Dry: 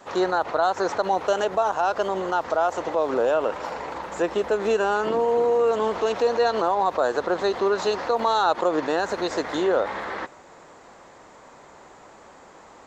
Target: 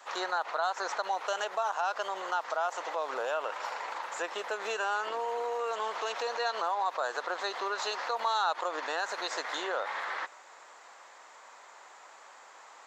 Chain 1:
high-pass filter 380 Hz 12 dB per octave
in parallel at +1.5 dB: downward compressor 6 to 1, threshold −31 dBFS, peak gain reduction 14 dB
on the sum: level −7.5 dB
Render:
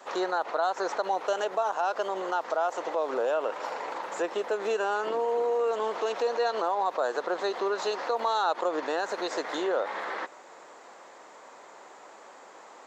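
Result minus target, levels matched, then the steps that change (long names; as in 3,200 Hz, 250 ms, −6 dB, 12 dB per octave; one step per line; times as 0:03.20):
500 Hz band +4.0 dB
change: high-pass filter 940 Hz 12 dB per octave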